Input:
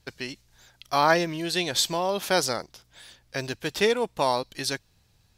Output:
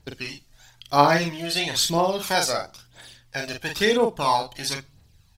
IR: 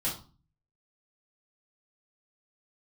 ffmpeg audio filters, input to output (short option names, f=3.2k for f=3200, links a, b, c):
-filter_complex "[0:a]aphaser=in_gain=1:out_gain=1:delay=1.7:decay=0.61:speed=1:type=triangular,asplit=2[a][b];[b]adelay=42,volume=-4.5dB[c];[a][c]amix=inputs=2:normalize=0,asplit=2[d][e];[1:a]atrim=start_sample=2205[f];[e][f]afir=irnorm=-1:irlink=0,volume=-22.5dB[g];[d][g]amix=inputs=2:normalize=0,volume=-1dB"